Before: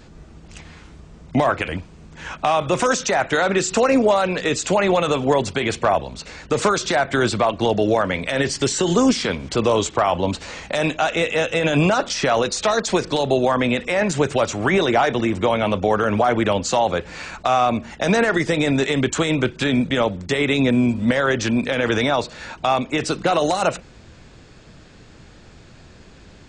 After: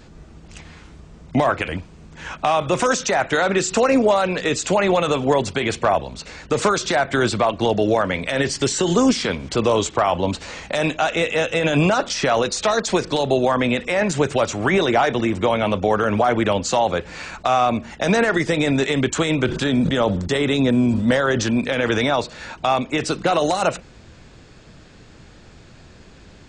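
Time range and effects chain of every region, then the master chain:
19.46–21.50 s: peaking EQ 2.3 kHz -7 dB 0.43 oct + decay stretcher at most 45 dB/s
whole clip: none

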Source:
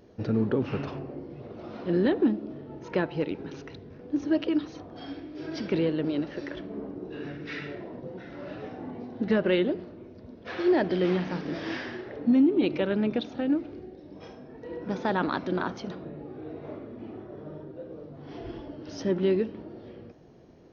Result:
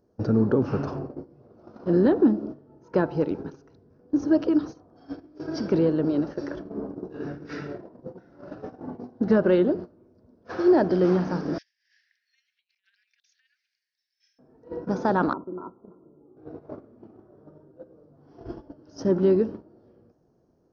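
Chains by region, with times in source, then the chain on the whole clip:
11.58–14.39 s: steep high-pass 1.8 kHz 72 dB/octave + compressor with a negative ratio -49 dBFS, ratio -0.5
15.33–16.37 s: rippled Chebyshev low-pass 1.4 kHz, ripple 9 dB + compression 16:1, threshold -33 dBFS
whole clip: gate -37 dBFS, range -16 dB; high-order bell 2.7 kHz -13 dB 1.3 oct; trim +4.5 dB

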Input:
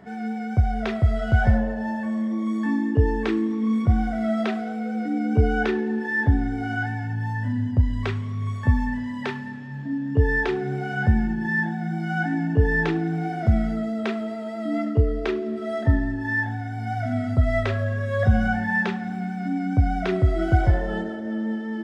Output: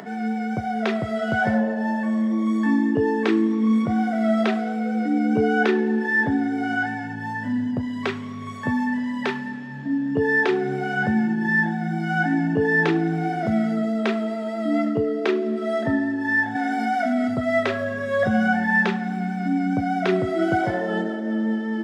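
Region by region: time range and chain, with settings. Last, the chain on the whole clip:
16.55–17.28 s: brick-wall FIR high-pass 180 Hz + level flattener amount 70%
whole clip: high-pass 170 Hz 24 dB/octave; upward compressor, threshold -38 dBFS; trim +4 dB

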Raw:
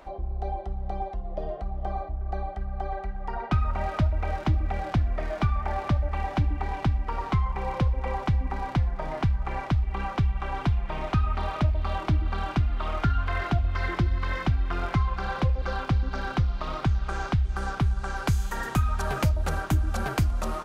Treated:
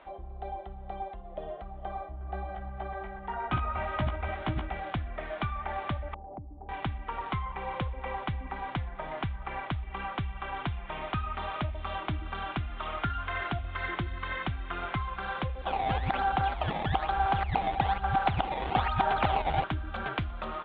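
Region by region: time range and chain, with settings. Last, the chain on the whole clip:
2.07–4.76 s: chunks repeated in reverse 123 ms, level -5.5 dB + treble shelf 4.4 kHz -4.5 dB + doubling 16 ms -4.5 dB
6.14–6.69 s: steep low-pass 770 Hz + compression 3:1, threshold -33 dBFS
15.64–19.64 s: chunks repeated in reverse 180 ms, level -0.5 dB + decimation with a swept rate 17×, swing 160% 1.1 Hz + peaking EQ 780 Hz +14 dB 0.37 oct
whole clip: elliptic low-pass 3.5 kHz, stop band 40 dB; tilt EQ +2 dB/octave; trim -2.5 dB

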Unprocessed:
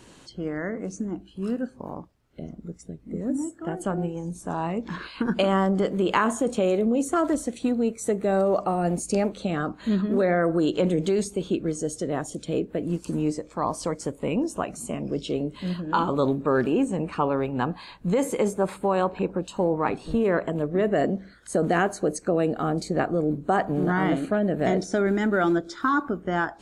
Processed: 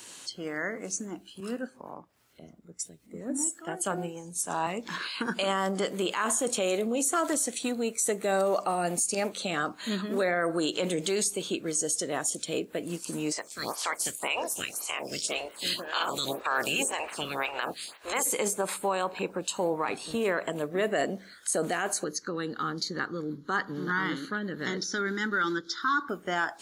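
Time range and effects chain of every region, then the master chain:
1.40–4.67 s: upward compressor, threshold -37 dBFS + three bands expanded up and down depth 70%
13.31–18.25 s: spectral peaks clipped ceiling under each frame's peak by 22 dB + lamp-driven phase shifter 1.9 Hz
22.04–26.09 s: low-pass 8.3 kHz + static phaser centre 2.5 kHz, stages 6
whole clip: high-pass 64 Hz; tilt EQ +4 dB/octave; peak limiter -17.5 dBFS

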